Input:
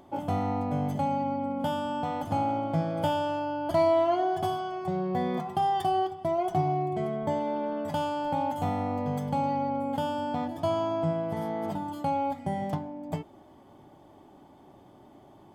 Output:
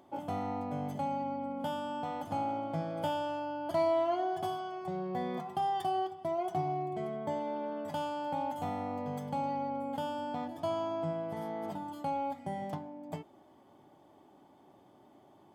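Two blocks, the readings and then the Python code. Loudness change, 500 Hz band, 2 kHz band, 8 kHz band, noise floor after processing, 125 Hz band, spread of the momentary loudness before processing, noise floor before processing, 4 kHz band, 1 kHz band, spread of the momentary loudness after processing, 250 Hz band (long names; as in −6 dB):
−6.5 dB, −6.0 dB, −5.5 dB, can't be measured, −61 dBFS, −9.5 dB, 6 LU, −54 dBFS, −5.5 dB, −5.5 dB, 6 LU, −7.5 dB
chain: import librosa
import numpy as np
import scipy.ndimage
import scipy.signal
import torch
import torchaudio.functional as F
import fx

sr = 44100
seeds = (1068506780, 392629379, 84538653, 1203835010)

y = fx.highpass(x, sr, hz=180.0, slope=6)
y = F.gain(torch.from_numpy(y), -5.5).numpy()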